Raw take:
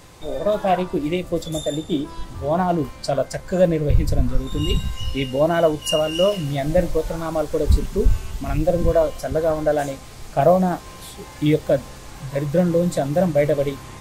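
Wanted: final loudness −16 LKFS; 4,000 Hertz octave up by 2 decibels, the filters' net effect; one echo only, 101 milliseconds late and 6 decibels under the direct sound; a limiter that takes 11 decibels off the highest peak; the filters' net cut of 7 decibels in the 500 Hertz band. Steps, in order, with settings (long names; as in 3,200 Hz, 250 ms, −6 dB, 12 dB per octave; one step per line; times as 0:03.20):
parametric band 500 Hz −9 dB
parametric band 4,000 Hz +3.5 dB
brickwall limiter −15.5 dBFS
single-tap delay 101 ms −6 dB
level +10 dB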